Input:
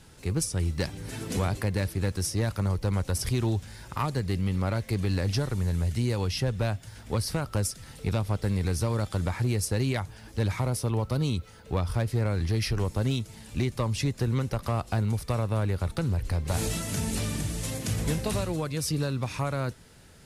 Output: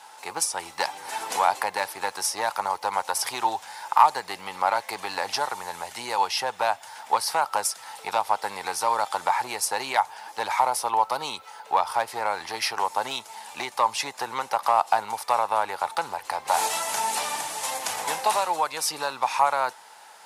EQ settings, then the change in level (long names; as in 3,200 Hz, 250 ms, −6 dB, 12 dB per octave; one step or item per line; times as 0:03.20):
high-pass with resonance 860 Hz, resonance Q 6.2
+5.5 dB